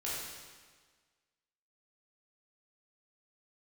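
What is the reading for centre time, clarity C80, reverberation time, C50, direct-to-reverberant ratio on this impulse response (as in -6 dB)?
101 ms, 1.0 dB, 1.5 s, -2.0 dB, -8.0 dB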